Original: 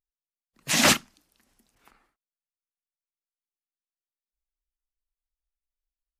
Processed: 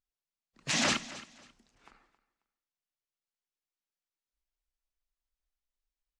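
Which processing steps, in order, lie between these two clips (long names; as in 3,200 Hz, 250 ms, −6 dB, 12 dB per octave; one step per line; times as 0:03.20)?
low-pass filter 7,300 Hz 24 dB per octave
brickwall limiter −19.5 dBFS, peak gain reduction 10.5 dB
on a send: repeating echo 270 ms, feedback 23%, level −17 dB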